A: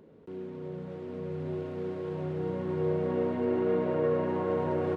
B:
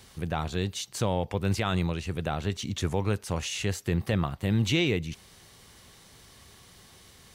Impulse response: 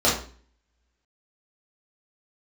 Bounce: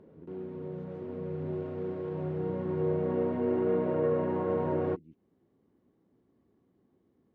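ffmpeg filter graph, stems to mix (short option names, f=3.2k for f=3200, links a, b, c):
-filter_complex "[0:a]volume=0dB[a];[1:a]acompressor=threshold=-36dB:ratio=5,bandpass=f=290:t=q:w=3:csg=0,volume=-2dB[b];[a][b]amix=inputs=2:normalize=0,lowpass=f=1.6k:p=1"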